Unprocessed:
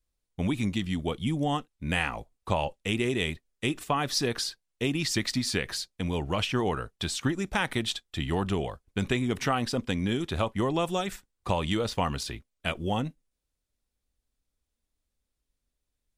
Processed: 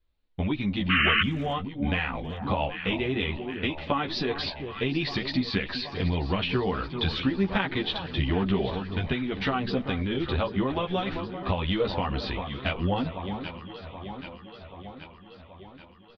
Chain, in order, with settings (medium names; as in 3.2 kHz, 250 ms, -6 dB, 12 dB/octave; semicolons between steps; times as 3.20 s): steep low-pass 4.3 kHz 48 dB/octave; on a send: echo whose repeats swap between lows and highs 390 ms, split 1.2 kHz, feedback 78%, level -12 dB; on the sum: compression, threshold -29 dBFS, peak gain reduction 8 dB; painted sound noise, 0.89–1.22 s, 1.1–3.1 kHz -28 dBFS; chorus voices 4, 0.48 Hz, delay 13 ms, depth 2.6 ms; speakerphone echo 320 ms, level -25 dB; trim +8.5 dB